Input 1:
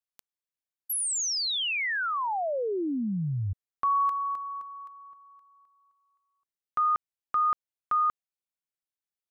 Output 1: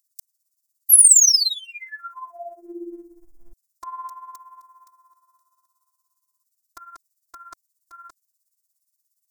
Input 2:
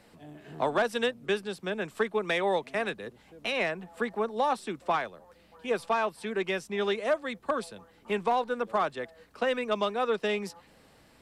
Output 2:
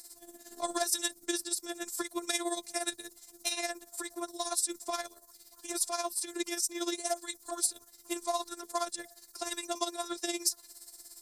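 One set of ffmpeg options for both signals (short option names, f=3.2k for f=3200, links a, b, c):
-af "aexciter=amount=9.4:drive=9.4:freq=4.5k,tremolo=f=17:d=0.71,afftfilt=real='hypot(re,im)*cos(PI*b)':imag='0':win_size=512:overlap=0.75,volume=-1dB"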